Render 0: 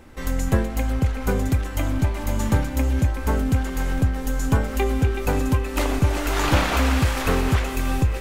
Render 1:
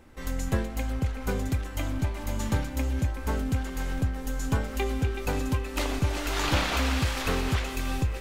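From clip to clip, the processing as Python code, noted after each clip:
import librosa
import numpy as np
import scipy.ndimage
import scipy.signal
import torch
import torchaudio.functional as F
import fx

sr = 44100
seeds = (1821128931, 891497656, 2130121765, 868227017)

y = fx.dynamic_eq(x, sr, hz=4100.0, q=0.77, threshold_db=-41.0, ratio=4.0, max_db=6)
y = y * 10.0 ** (-7.0 / 20.0)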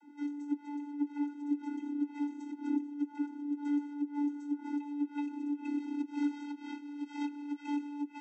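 y = x + 0.42 * np.pad(x, (int(3.9 * sr / 1000.0), 0))[:len(x)]
y = fx.over_compress(y, sr, threshold_db=-31.0, ratio=-0.5)
y = fx.vocoder(y, sr, bands=32, carrier='square', carrier_hz=290.0)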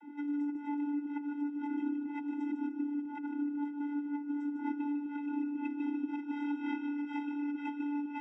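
y = fx.over_compress(x, sr, threshold_db=-39.0, ratio=-1.0)
y = scipy.signal.savgol_filter(y, 25, 4, mode='constant')
y = fx.echo_feedback(y, sr, ms=151, feedback_pct=38, wet_db=-8.0)
y = y * 10.0 ** (3.5 / 20.0)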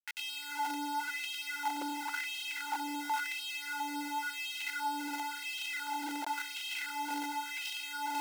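y = fx.room_early_taps(x, sr, ms=(14, 61), db=(-3.0, -16.5))
y = fx.quant_companded(y, sr, bits=2)
y = fx.filter_lfo_highpass(y, sr, shape='sine', hz=0.94, low_hz=520.0, high_hz=3000.0, q=4.2)
y = y * 10.0 ** (-7.0 / 20.0)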